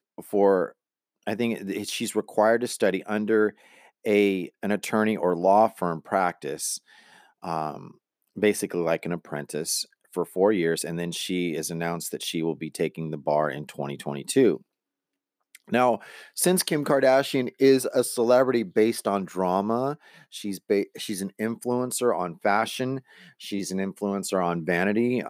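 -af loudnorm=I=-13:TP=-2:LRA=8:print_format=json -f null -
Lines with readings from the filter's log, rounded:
"input_i" : "-25.5",
"input_tp" : "-7.2",
"input_lra" : "5.2",
"input_thresh" : "-35.9",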